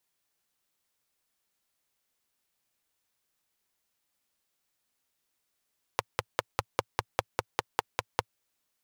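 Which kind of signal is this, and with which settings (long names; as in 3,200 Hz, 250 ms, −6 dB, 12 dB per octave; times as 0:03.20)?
pulse-train model of a single-cylinder engine, steady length 2.35 s, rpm 600, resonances 110/510/860 Hz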